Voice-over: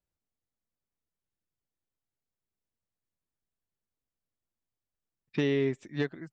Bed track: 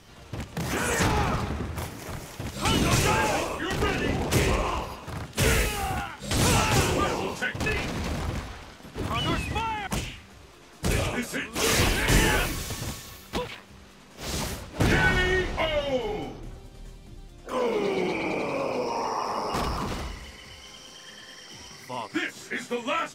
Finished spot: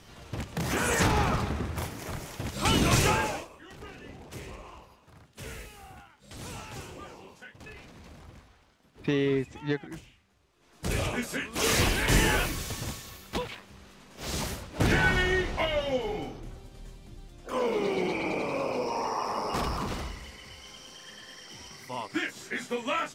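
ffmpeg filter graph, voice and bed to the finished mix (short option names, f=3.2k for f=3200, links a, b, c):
-filter_complex "[0:a]adelay=3700,volume=1dB[a];[1:a]volume=16.5dB,afade=t=out:st=3.06:d=0.42:silence=0.11885,afade=t=in:st=10.55:d=0.52:silence=0.141254[b];[a][b]amix=inputs=2:normalize=0"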